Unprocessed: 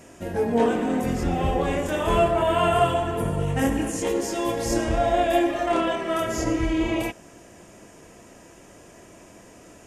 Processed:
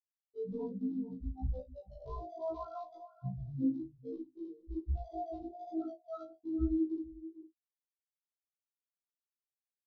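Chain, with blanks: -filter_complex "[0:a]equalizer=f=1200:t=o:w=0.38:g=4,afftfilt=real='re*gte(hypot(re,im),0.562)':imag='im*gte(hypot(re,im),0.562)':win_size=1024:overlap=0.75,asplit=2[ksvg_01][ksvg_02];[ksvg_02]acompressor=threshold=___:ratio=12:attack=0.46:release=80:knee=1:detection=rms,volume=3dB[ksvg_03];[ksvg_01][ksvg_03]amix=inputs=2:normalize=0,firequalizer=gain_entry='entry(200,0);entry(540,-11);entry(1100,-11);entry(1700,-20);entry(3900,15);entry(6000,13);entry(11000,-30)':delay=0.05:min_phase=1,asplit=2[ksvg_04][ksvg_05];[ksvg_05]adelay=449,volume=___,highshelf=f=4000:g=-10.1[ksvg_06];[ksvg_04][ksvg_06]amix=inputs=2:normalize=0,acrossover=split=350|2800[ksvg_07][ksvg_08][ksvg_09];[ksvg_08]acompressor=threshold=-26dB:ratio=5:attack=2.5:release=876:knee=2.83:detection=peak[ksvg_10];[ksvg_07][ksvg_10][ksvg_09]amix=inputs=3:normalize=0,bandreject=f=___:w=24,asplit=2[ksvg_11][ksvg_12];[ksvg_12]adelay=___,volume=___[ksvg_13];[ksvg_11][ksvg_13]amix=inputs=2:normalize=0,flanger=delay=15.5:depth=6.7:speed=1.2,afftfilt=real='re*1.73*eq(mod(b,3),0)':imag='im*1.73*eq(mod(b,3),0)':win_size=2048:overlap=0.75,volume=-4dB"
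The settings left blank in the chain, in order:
-30dB, -17dB, 7800, 38, -13.5dB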